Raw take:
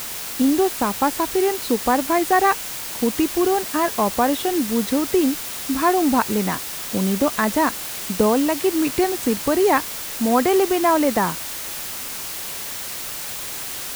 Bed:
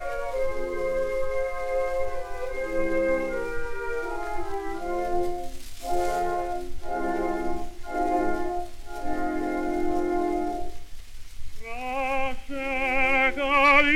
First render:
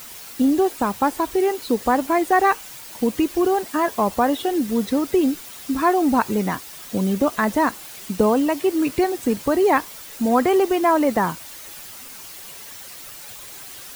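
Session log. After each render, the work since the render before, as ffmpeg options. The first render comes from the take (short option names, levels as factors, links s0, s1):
-af "afftdn=nr=10:nf=-31"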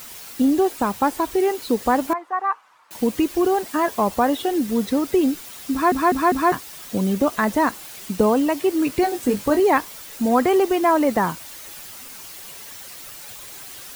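-filter_complex "[0:a]asettb=1/sr,asplit=3[s0][s1][s2];[s0]atrim=end=2.134[s3];[s1]atrim=start=2.13:end=2.91,asetpts=PTS-STARTPTS,afade=t=in:d=0.004:c=qsin,afade=t=out:st=0.776:d=0.004:c=qsin,bandpass=f=1100:t=q:w=3.6[s4];[s2]atrim=start=2.906[s5];[s3][s4]acrossfade=d=0.004:c1=hsin:c2=qsin[s6];[s6][s5]acrossfade=d=0.004:c1=qsin:c2=hsin,asettb=1/sr,asplit=3[s7][s8][s9];[s7]atrim=end=9.014[s10];[s8]atrim=start=9.01:end=9.6,asetpts=PTS-STARTPTS,afade=t=in:d=0.004:c=qsin,afade=t=out:st=0.586:d=0.004:c=qsin,asplit=2[s11][s12];[s12]adelay=20,volume=0.473[s13];[s11][s13]amix=inputs=2:normalize=0,atrim=end_sample=26019[s14];[s9]atrim=start=9.596[s15];[s10][s14]acrossfade=d=0.004:c1=hsin:c2=qsin[s16];[s16][s15]acrossfade=d=0.004:c1=qsin:c2=hsin,asplit=5[s17][s18][s19][s20][s21];[s17]atrim=end=5.922[s22];[s18]atrim=start=5.718:end=5.922[s23];[s19]atrim=start=5.718:end=5.922[s24];[s20]atrim=start=5.718:end=5.922[s25];[s21]atrim=start=6.518[s26];[s22][s23]acrossfade=d=0.004:c1=hsin:c2=hsin[s27];[s27][s24]acrossfade=d=0.004:c1=hsin:c2=hsin[s28];[s28][s25]acrossfade=d=0.004:c1=hsin:c2=hsin[s29];[s29][s26]acrossfade=d=0.004:c1=hsin:c2=hsin"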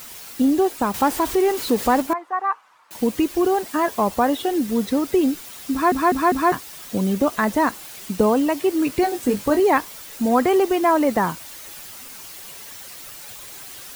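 -filter_complex "[0:a]asettb=1/sr,asplit=3[s0][s1][s2];[s0]atrim=end=0.944[s3];[s1]atrim=start=0.94:end=2.02,asetpts=PTS-STARTPTS,afade=t=in:d=0.004:c=qsin,afade=t=out:st=1.076:d=0.004:c=qsin,aeval=exprs='val(0)+0.5*0.0422*sgn(val(0))':c=same[s4];[s2]atrim=start=2.016[s5];[s3][s4]acrossfade=d=0.004:c1=hsin:c2=qsin[s6];[s6][s5]acrossfade=d=0.004:c1=qsin:c2=hsin"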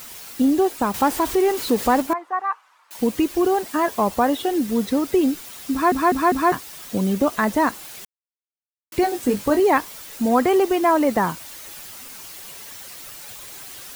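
-filter_complex "[0:a]asettb=1/sr,asplit=3[s0][s1][s2];[s0]atrim=end=2.414[s3];[s1]atrim=start=2.41:end=2.99,asetpts=PTS-STARTPTS,afade=t=in:d=0.004:c=qsin,afade=t=out:st=0.576:d=0.004:c=qsin,highpass=f=830:p=1[s4];[s2]atrim=start=2.986[s5];[s3][s4]acrossfade=d=0.004:c1=hsin:c2=qsin[s6];[s6][s5]acrossfade=d=0.004:c1=qsin:c2=hsin,asplit=3[s7][s8][s9];[s7]atrim=end=8.05,asetpts=PTS-STARTPTS,afade=t=out:st=8.046:d=0.004:c=hsin[s10];[s8]atrim=start=8.05:end=8.92,asetpts=PTS-STARTPTS,volume=0[s11];[s9]atrim=start=8.92,asetpts=PTS-STARTPTS,afade=t=in:d=0.004:c=hsin[s12];[s10][s11][s12]concat=n=3:v=0:a=1"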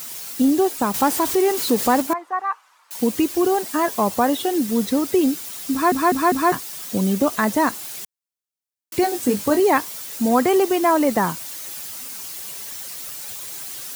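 -af "highpass=97,bass=f=250:g=2,treble=f=4000:g=6"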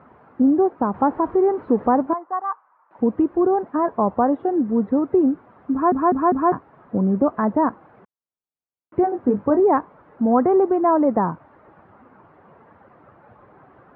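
-af "lowpass=f=1300:w=0.5412,lowpass=f=1300:w=1.3066,aemphasis=mode=reproduction:type=75fm"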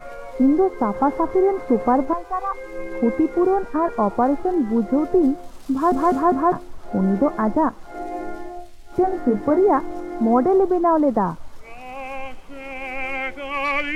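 -filter_complex "[1:a]volume=0.562[s0];[0:a][s0]amix=inputs=2:normalize=0"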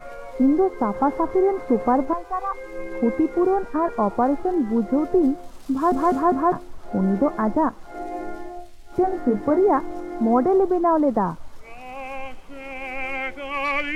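-af "volume=0.841"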